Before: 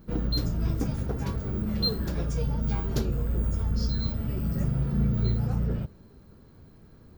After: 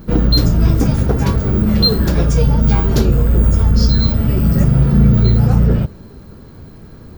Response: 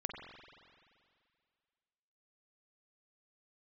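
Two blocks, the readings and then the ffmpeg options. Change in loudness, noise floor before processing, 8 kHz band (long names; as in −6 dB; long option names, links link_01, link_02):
+15.0 dB, −53 dBFS, +14.5 dB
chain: -af "alimiter=level_in=16.5dB:limit=-1dB:release=50:level=0:latency=1,volume=-1dB"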